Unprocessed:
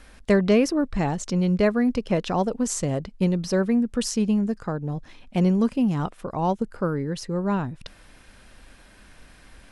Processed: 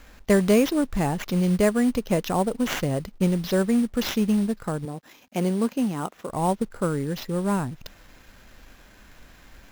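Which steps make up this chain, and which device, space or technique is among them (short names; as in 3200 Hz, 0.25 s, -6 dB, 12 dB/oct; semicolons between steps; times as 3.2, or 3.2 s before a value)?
4.85–6.29 HPF 230 Hz 12 dB/oct; early companding sampler (sample-rate reducer 9100 Hz, jitter 0%; companded quantiser 6-bit)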